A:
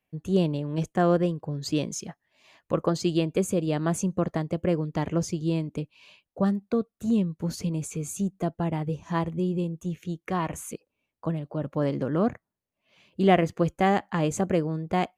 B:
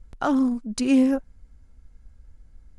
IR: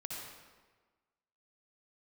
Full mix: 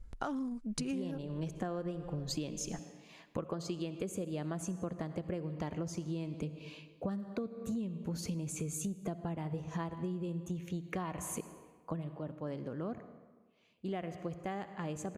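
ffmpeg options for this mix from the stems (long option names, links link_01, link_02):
-filter_complex "[0:a]adelay=650,volume=-2dB,afade=type=out:start_time=11.65:duration=0.66:silence=0.251189,asplit=2[link_01][link_02];[link_02]volume=-9.5dB[link_03];[1:a]volume=-3.5dB[link_04];[2:a]atrim=start_sample=2205[link_05];[link_03][link_05]afir=irnorm=-1:irlink=0[link_06];[link_01][link_04][link_06]amix=inputs=3:normalize=0,acompressor=threshold=-34dB:ratio=16"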